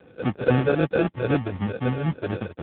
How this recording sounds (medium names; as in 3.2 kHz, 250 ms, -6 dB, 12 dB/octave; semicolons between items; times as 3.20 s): a buzz of ramps at a fixed pitch in blocks of 8 samples; phasing stages 12, 3.9 Hz, lowest notch 200–1200 Hz; aliases and images of a low sample rate 1 kHz, jitter 0%; AMR-NB